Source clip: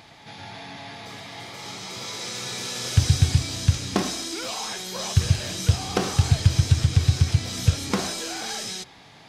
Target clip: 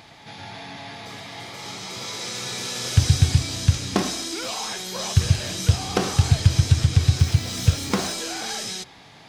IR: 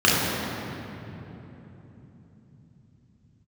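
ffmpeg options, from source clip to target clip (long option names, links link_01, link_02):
-filter_complex "[0:a]asettb=1/sr,asplit=3[link_01][link_02][link_03];[link_01]atrim=end=7.194[link_04];[link_02]atrim=start=7.19:end=8.15,asetpts=PTS-STARTPTS,afade=type=in:duration=0.004:curve=qsin,afade=type=out:start_time=0.956:duration=0.004:curve=qsin,acrusher=bits=8:dc=4:mix=0:aa=0.000001[link_05];[link_03]atrim=start=8.146[link_06];[link_04][link_05]acrossfade=duration=0.004:curve1=hsin:curve2=qsin[link_07];[link_07][link_06]acrossfade=duration=0.004:curve1=qsin:curve2=hsin,volume=1.5dB"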